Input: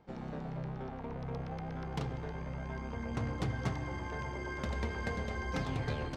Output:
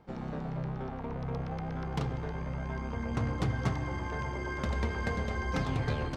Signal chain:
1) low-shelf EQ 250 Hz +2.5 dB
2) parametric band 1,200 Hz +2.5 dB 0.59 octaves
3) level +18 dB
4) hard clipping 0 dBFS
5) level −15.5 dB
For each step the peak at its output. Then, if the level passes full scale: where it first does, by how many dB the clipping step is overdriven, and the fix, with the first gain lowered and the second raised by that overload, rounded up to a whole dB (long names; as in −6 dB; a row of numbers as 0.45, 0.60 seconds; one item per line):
−20.0, −20.0, −2.0, −2.0, −17.5 dBFS
no step passes full scale